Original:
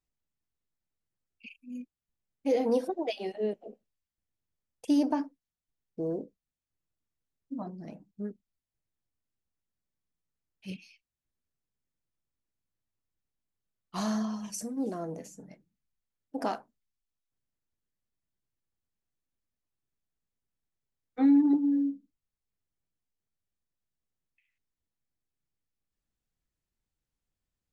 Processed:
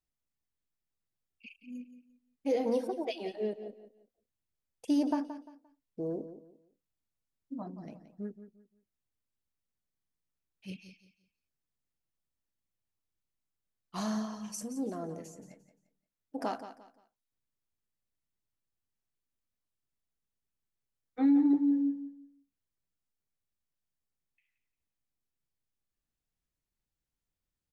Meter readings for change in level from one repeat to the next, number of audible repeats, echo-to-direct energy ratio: −11.0 dB, 3, −11.5 dB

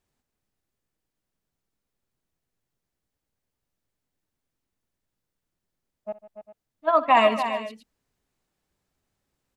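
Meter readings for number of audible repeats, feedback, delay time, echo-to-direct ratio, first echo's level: 4, repeats not evenly spaced, 62 ms, −8.0 dB, −18.0 dB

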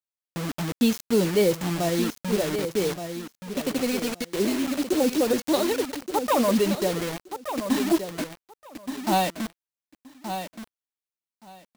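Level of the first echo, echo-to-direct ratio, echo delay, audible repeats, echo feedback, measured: −9.0 dB, −9.0 dB, 1,174 ms, 2, 16%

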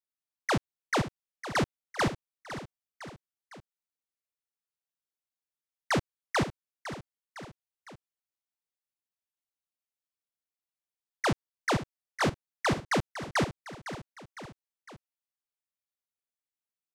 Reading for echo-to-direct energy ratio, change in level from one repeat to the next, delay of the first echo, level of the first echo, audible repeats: −10.5 dB, −5.0 dB, 507 ms, −12.0 dB, 3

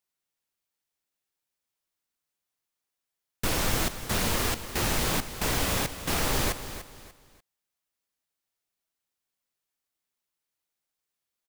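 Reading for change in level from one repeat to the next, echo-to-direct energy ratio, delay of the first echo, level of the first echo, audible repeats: −10.0 dB, −11.5 dB, 294 ms, −12.0 dB, 3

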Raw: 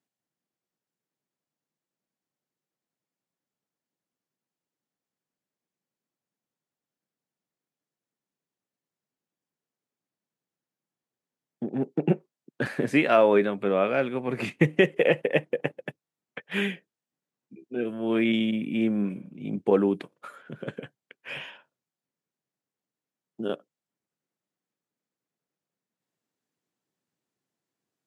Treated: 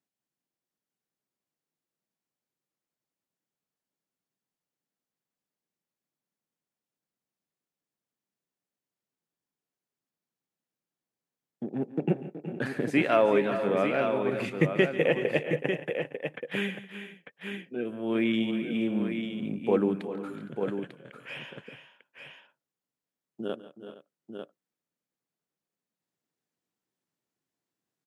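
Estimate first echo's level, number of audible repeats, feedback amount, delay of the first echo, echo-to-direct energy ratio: −17.0 dB, 4, repeats not evenly spaced, 142 ms, −5.0 dB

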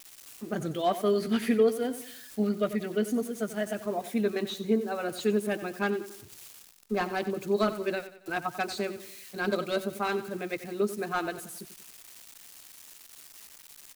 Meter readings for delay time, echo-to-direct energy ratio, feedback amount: 92 ms, −12.5 dB, 43%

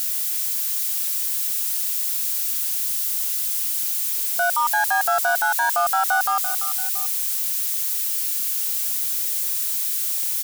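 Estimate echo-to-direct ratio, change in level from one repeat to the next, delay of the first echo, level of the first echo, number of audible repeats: −10.5 dB, −5.0 dB, 340 ms, −11.5 dB, 2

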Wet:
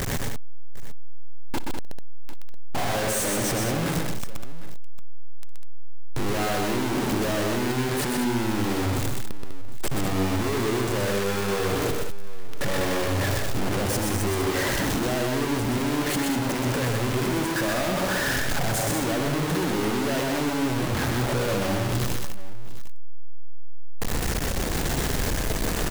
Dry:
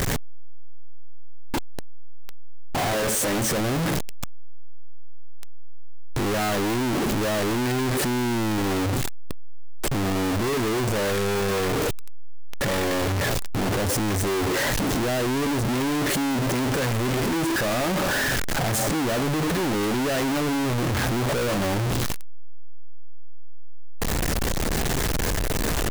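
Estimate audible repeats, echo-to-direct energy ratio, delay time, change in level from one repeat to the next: 4, −2.0 dB, 61 ms, repeats not evenly spaced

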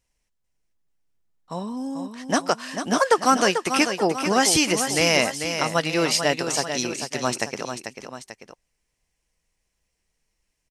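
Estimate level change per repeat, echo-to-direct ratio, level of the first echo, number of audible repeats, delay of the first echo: −5.5 dB, −7.0 dB, −8.0 dB, 2, 442 ms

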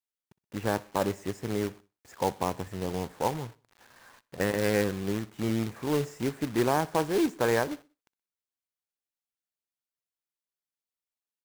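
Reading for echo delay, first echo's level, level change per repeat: 62 ms, −23.0 dB, −7.0 dB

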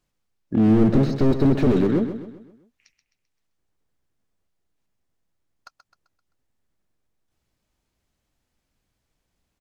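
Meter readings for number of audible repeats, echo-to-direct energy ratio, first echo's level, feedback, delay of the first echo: 4, −9.0 dB, −10.0 dB, 45%, 130 ms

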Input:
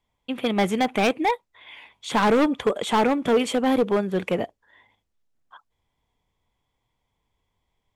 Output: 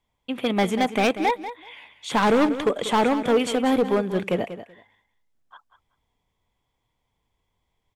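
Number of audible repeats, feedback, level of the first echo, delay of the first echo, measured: 2, 17%, −12.0 dB, 190 ms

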